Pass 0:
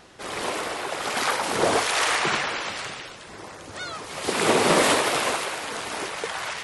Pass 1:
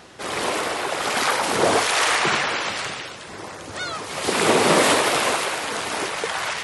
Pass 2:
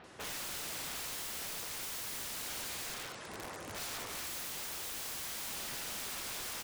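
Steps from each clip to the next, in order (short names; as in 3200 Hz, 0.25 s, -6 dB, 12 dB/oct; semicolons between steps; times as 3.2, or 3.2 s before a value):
HPF 56 Hz; in parallel at -2.5 dB: limiter -18.5 dBFS, peak gain reduction 9 dB
soft clip -20.5 dBFS, distortion -9 dB; bands offset in time lows, highs 40 ms, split 3700 Hz; wrapped overs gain 28 dB; gain -8.5 dB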